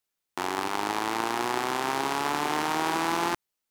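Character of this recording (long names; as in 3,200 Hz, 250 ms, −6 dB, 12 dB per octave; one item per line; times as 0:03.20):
background noise floor −84 dBFS
spectral slope −3.0 dB per octave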